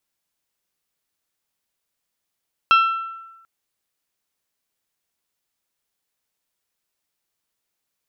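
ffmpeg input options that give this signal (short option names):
-f lavfi -i "aevalsrc='0.335*pow(10,-3*t/1.09)*sin(2*PI*1340*t)+0.158*pow(10,-3*t/0.671)*sin(2*PI*2680*t)+0.075*pow(10,-3*t/0.591)*sin(2*PI*3216*t)+0.0355*pow(10,-3*t/0.505)*sin(2*PI*4020*t)+0.0168*pow(10,-3*t/0.413)*sin(2*PI*5360*t)':d=0.74:s=44100"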